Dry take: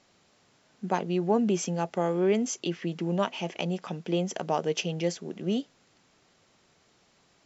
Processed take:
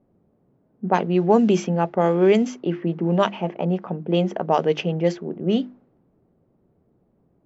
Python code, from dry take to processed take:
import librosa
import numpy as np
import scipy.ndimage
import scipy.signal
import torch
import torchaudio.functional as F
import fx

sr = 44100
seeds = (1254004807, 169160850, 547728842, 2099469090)

y = fx.env_lowpass(x, sr, base_hz=350.0, full_db=-18.5)
y = fx.hum_notches(y, sr, base_hz=50, count=7)
y = y * 10.0 ** (8.5 / 20.0)